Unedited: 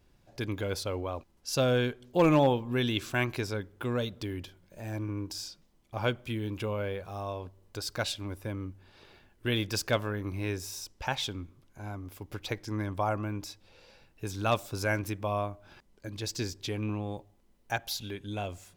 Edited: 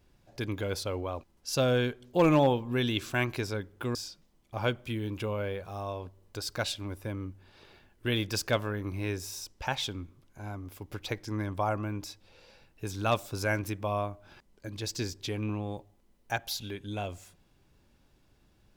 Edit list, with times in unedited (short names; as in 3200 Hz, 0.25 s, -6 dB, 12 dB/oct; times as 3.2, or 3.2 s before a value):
3.95–5.35 cut